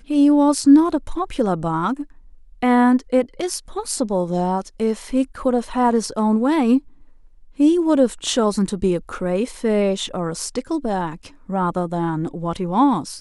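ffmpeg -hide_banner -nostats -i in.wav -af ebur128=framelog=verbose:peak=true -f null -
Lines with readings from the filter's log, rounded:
Integrated loudness:
  I:         -19.8 LUFS
  Threshold: -30.1 LUFS
Loudness range:
  LRA:         4.2 LU
  Threshold: -40.6 LUFS
  LRA low:   -23.0 LUFS
  LRA high:  -18.8 LUFS
True peak:
  Peak:       -3.7 dBFS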